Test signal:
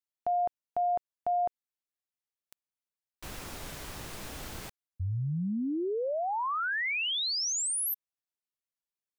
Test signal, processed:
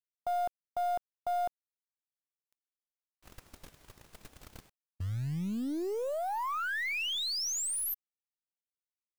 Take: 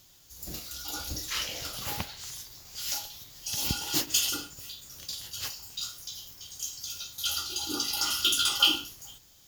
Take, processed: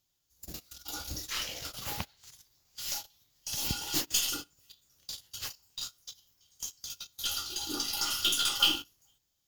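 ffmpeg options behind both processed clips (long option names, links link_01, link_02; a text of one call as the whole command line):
ffmpeg -i in.wav -af "acrusher=bits=5:mode=log:mix=0:aa=0.000001,agate=range=-18dB:threshold=-42dB:ratio=16:release=35:detection=peak,aeval=exprs='0.422*(cos(1*acos(clip(val(0)/0.422,-1,1)))-cos(1*PI/2))+0.0211*(cos(6*acos(clip(val(0)/0.422,-1,1)))-cos(6*PI/2))+0.0335*(cos(8*acos(clip(val(0)/0.422,-1,1)))-cos(8*PI/2))':channel_layout=same,volume=-3dB" out.wav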